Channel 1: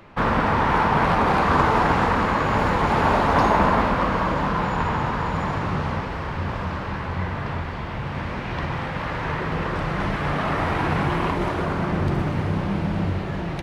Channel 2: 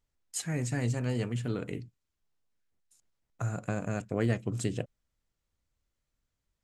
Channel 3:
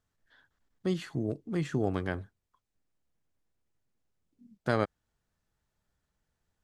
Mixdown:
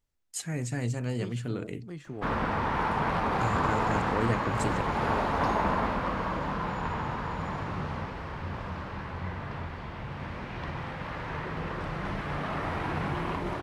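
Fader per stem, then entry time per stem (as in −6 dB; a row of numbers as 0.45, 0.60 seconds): −9.0, −0.5, −10.0 decibels; 2.05, 0.00, 0.35 seconds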